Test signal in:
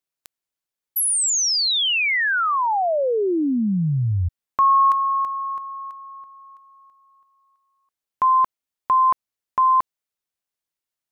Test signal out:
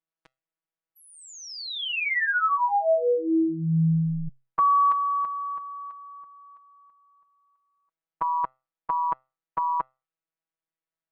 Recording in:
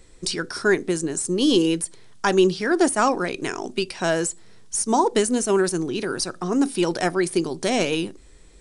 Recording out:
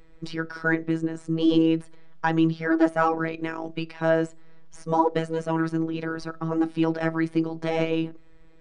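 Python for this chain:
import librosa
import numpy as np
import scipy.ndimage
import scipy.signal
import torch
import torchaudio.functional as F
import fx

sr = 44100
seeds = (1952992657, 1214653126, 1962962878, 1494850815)

y = scipy.signal.sosfilt(scipy.signal.butter(2, 2100.0, 'lowpass', fs=sr, output='sos'), x)
y = fx.robotise(y, sr, hz=162.0)
y = fx.comb_fb(y, sr, f0_hz=130.0, decay_s=0.31, harmonics='all', damping=0.0, mix_pct=30)
y = y * 10.0 ** (3.0 / 20.0)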